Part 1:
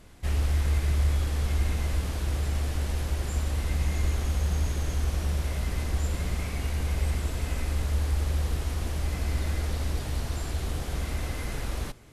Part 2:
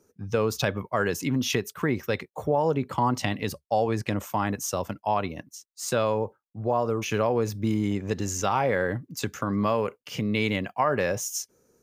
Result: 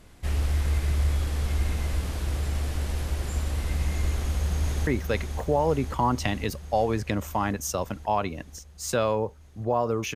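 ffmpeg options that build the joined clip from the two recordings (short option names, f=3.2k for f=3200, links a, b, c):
-filter_complex "[0:a]apad=whole_dur=10.15,atrim=end=10.15,atrim=end=4.872[a];[1:a]atrim=start=1.858:end=7.14[b];[a][b]acrossfade=d=0.004:c1=hsin:c2=hsin,asplit=2[c][d];[d]afade=t=in:st=4.1:d=0.01,afade=t=out:st=4.87:d=0.01,aecho=0:1:530|1060|1590|2120|2650|3180|3710|4240|4770|5300|5830|6360:0.473151|0.354863|0.266148|0.199611|0.149708|0.112281|0.0842108|0.0631581|0.0473686|0.0355264|0.0266448|0.0199836[e];[c][e]amix=inputs=2:normalize=0"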